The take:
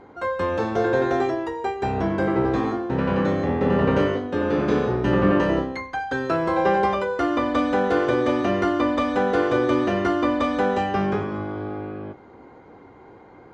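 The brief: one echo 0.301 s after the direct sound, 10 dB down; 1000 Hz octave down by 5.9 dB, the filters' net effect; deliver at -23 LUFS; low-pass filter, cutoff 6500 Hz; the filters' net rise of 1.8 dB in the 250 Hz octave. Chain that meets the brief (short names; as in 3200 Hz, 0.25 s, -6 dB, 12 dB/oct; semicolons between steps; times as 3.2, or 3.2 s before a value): LPF 6500 Hz; bell 250 Hz +3 dB; bell 1000 Hz -8.5 dB; echo 0.301 s -10 dB; gain -0.5 dB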